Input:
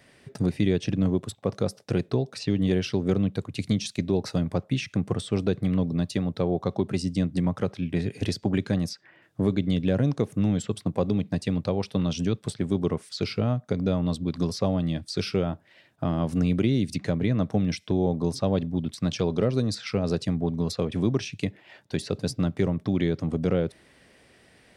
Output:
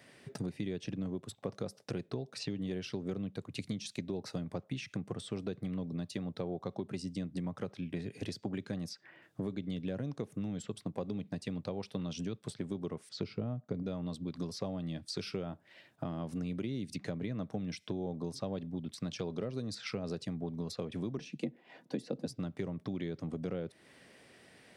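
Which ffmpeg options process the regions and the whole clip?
-filter_complex "[0:a]asettb=1/sr,asplit=3[s0][s1][s2];[s0]atrim=end=13.094[s3];[s1]atrim=start=13.09:end=13.83,asetpts=PTS-STARTPTS,afade=t=in:d=0.004:c=qsin,afade=t=out:st=0.736:d=0.004:c=qsin,lowpass=6800,tiltshelf=f=900:g=5.5[s4];[s2]atrim=start=13.826[s5];[s3][s4]acrossfade=d=0.004:c1=hsin:c2=qsin[s6];[s6][s5]acrossfade=d=0.004:c1=qsin:c2=hsin,asettb=1/sr,asplit=3[s7][s8][s9];[s7]atrim=end=21.174[s10];[s8]atrim=start=21.17:end=22.26,asetpts=PTS-STARTPTS,afade=t=in:d=0.004:c=qsin,afade=t=out:st=1.086:d=0.004:c=qsin,tiltshelf=f=890:g=6,aecho=1:1:4.2:0.42,atrim=end_sample=48069,afreqshift=44[s11];[s9]atrim=start=22.256[s12];[s10][s11]acrossfade=d=0.004:c1=hsin:c2=qsin[s13];[s13][s12]acrossfade=d=0.004:c1=qsin:c2=hsin,acompressor=threshold=0.0178:ratio=3,highpass=110,volume=0.794"

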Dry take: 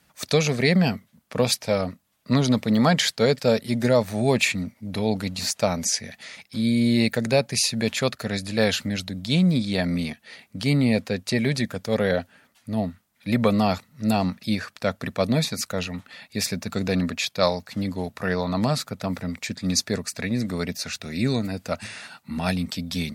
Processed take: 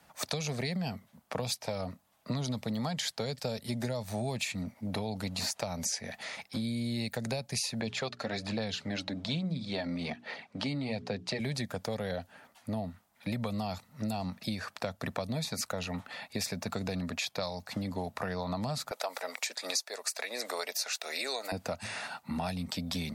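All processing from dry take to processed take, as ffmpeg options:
-filter_complex "[0:a]asettb=1/sr,asplit=3[s0][s1][s2];[s0]atrim=end=7.804[s3];[s1]atrim=start=7.8:end=11.4,asetpts=PTS-STARTPTS,afade=t=in:d=0.004:c=qsin,afade=t=out:st=3.596:d=0.004:c=qsin,bandreject=f=60:t=h:w=6,bandreject=f=120:t=h:w=6,bandreject=f=180:t=h:w=6,bandreject=f=240:t=h:w=6,bandreject=f=300:t=h:w=6,bandreject=f=360:t=h:w=6,bandreject=f=420:t=h:w=6,aphaser=in_gain=1:out_gain=1:delay=3.7:decay=0.41:speed=1.2:type=sinusoidal,highpass=120,lowpass=4900[s4];[s2]atrim=start=11.396[s5];[s3][s4]acrossfade=d=0.004:c1=hsin:c2=qsin[s6];[s6][s5]acrossfade=d=0.004:c1=qsin:c2=hsin,asettb=1/sr,asplit=3[s7][s8][s9];[s7]atrim=end=18.914[s10];[s8]atrim=start=18.91:end=21.52,asetpts=PTS-STARTPTS,afade=t=in:d=0.004:c=qsin,afade=t=out:st=2.606:d=0.004:c=qsin,highpass=f=460:w=0.5412,highpass=f=460:w=1.3066,highshelf=f=3000:g=9[s11];[s9]atrim=start=21.516[s12];[s10][s11]acrossfade=d=0.004:c1=hsin:c2=qsin[s13];[s13][s12]acrossfade=d=0.004:c1=qsin:c2=hsin,acrossover=split=170|3000[s14][s15][s16];[s15]acompressor=threshold=0.0282:ratio=6[s17];[s14][s17][s16]amix=inputs=3:normalize=0,equalizer=f=790:w=1.1:g=10,acompressor=threshold=0.0355:ratio=6,volume=0.794"

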